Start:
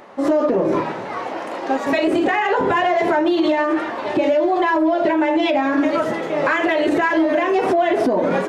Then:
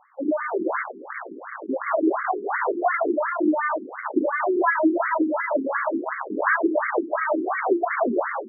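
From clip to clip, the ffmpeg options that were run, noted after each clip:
ffmpeg -i in.wav -af "aeval=exprs='0.355*(cos(1*acos(clip(val(0)/0.355,-1,1)))-cos(1*PI/2))+0.1*(cos(6*acos(clip(val(0)/0.355,-1,1)))-cos(6*PI/2))+0.0794*(cos(7*acos(clip(val(0)/0.355,-1,1)))-cos(7*PI/2))':channel_layout=same,dynaudnorm=framelen=450:gausssize=3:maxgain=9dB,afftfilt=real='re*between(b*sr/1024,290*pow(1600/290,0.5+0.5*sin(2*PI*2.8*pts/sr))/1.41,290*pow(1600/290,0.5+0.5*sin(2*PI*2.8*pts/sr))*1.41)':imag='im*between(b*sr/1024,290*pow(1600/290,0.5+0.5*sin(2*PI*2.8*pts/sr))/1.41,290*pow(1600/290,0.5+0.5*sin(2*PI*2.8*pts/sr))*1.41)':win_size=1024:overlap=0.75,volume=-5.5dB" out.wav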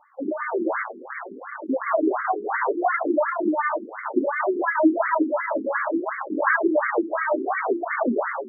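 ffmpeg -i in.wav -af "flanger=delay=3.3:depth=6:regen=18:speed=0.63:shape=sinusoidal,volume=3.5dB" out.wav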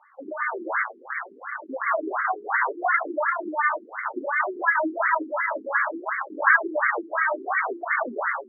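ffmpeg -i in.wav -af "bandpass=frequency=1800:width_type=q:width=1.1:csg=0,volume=4.5dB" out.wav

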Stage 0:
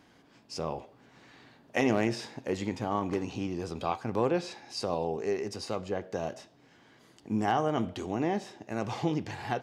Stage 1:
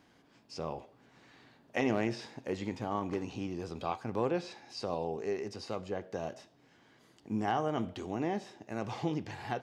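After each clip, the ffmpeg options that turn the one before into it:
ffmpeg -i in.wav -filter_complex "[0:a]acrossover=split=6200[link_01][link_02];[link_02]acompressor=threshold=-58dB:ratio=4:attack=1:release=60[link_03];[link_01][link_03]amix=inputs=2:normalize=0,volume=-4dB" out.wav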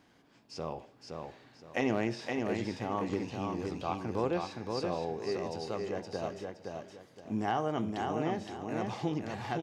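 ffmpeg -i in.wav -af "aecho=1:1:518|1036|1554|2072:0.631|0.183|0.0531|0.0154" out.wav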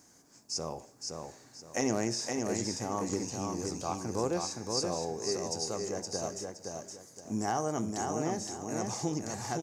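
ffmpeg -i in.wav -af "highshelf=frequency=4600:width_type=q:width=3:gain=13" out.wav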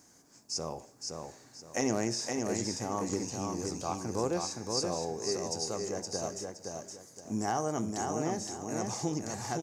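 ffmpeg -i in.wav -af anull out.wav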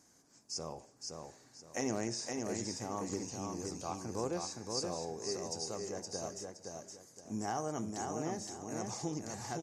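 ffmpeg -i in.wav -af "volume=-5dB" -ar 48000 -c:a libmp3lame -b:a 56k out.mp3

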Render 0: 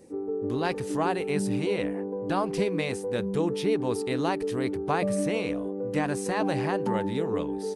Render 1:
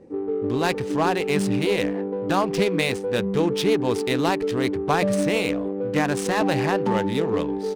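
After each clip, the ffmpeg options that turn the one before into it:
ffmpeg -i in.wav -af "highshelf=frequency=3000:gain=10.5,aeval=exprs='clip(val(0),-1,0.112)':channel_layout=same,adynamicsmooth=sensitivity=6.5:basefreq=1300,volume=5dB" out.wav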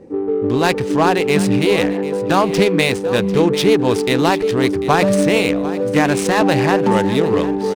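ffmpeg -i in.wav -af "aecho=1:1:745|1490|2235:0.178|0.0445|0.0111,volume=7dB" out.wav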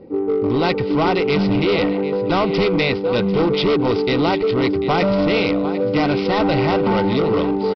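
ffmpeg -i in.wav -af "aresample=11025,asoftclip=type=hard:threshold=-13.5dB,aresample=44100,asuperstop=centerf=1700:order=20:qfactor=6.7" out.wav

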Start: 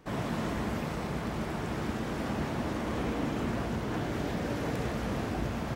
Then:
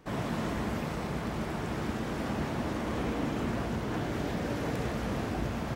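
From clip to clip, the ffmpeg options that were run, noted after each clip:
ffmpeg -i in.wav -af anull out.wav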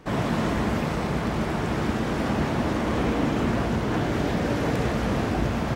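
ffmpeg -i in.wav -af "highshelf=frequency=9800:gain=-6.5,volume=8dB" out.wav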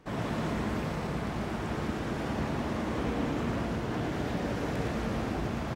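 ffmpeg -i in.wav -af "aecho=1:1:114:0.562,volume=-8.5dB" out.wav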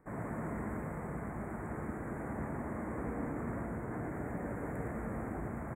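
ffmpeg -i in.wav -af "asuperstop=centerf=4100:order=12:qfactor=0.77,volume=-7dB" out.wav

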